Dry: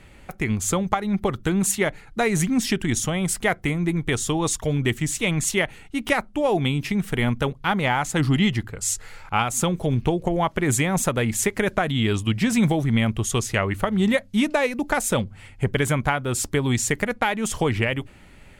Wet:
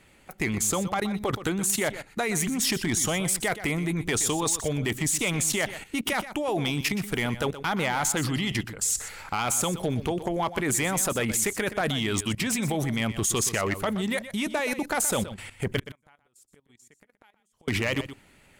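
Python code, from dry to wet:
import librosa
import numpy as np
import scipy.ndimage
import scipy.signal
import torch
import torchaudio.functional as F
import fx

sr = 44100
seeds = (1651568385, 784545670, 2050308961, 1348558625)

p1 = fx.low_shelf(x, sr, hz=100.0, db=-11.5)
p2 = fx.gate_flip(p1, sr, shuts_db=-19.0, range_db=-41, at=(15.77, 17.68))
p3 = fx.high_shelf(p2, sr, hz=6500.0, db=7.0)
p4 = fx.level_steps(p3, sr, step_db=16)
p5 = fx.hpss(p4, sr, part='percussive', gain_db=4)
p6 = np.clip(p5, -10.0 ** (-23.0 / 20.0), 10.0 ** (-23.0 / 20.0))
p7 = p6 + fx.echo_single(p6, sr, ms=123, db=-13.0, dry=0)
y = p7 * librosa.db_to_amplitude(4.0)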